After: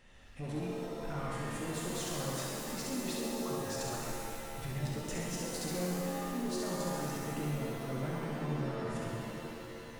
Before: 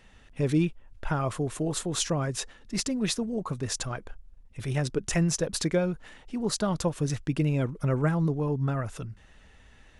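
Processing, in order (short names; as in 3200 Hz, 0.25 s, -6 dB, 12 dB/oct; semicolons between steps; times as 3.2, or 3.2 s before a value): compressor 2:1, threshold -37 dBFS, peak gain reduction 10 dB; soft clip -32 dBFS, distortion -13 dB; on a send: flutter echo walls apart 11.5 m, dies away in 0.81 s; on the sum: shimmer reverb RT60 2.5 s, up +7 st, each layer -2 dB, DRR -2 dB; gain -6 dB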